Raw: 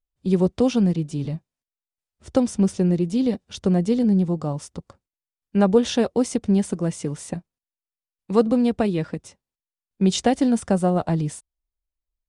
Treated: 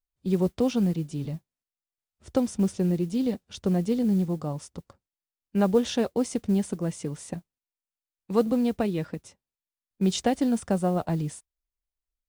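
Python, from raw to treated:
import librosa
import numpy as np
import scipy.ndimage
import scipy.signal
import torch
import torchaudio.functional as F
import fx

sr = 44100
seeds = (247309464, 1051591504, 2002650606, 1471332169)

y = fx.mod_noise(x, sr, seeds[0], snr_db=31)
y = y * librosa.db_to_amplitude(-5.0)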